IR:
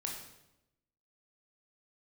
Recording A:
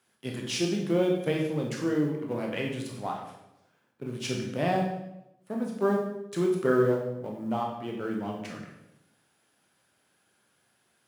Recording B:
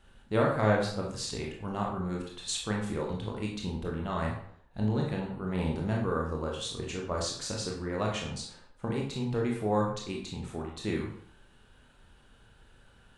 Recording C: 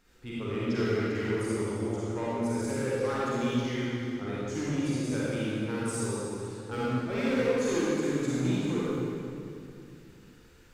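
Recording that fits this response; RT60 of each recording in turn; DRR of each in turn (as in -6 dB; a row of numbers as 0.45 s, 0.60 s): A; 0.90 s, 0.60 s, 2.6 s; -0.5 dB, -1.5 dB, -8.5 dB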